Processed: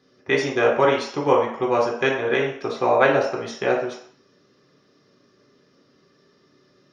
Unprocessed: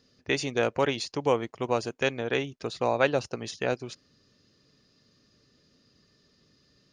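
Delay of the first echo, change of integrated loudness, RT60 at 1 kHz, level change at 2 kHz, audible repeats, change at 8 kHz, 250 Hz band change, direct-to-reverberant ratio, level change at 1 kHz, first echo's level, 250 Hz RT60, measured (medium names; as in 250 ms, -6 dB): no echo, +7.5 dB, 0.65 s, +7.5 dB, no echo, no reading, +6.0 dB, -3.5 dB, +9.0 dB, no echo, 0.45 s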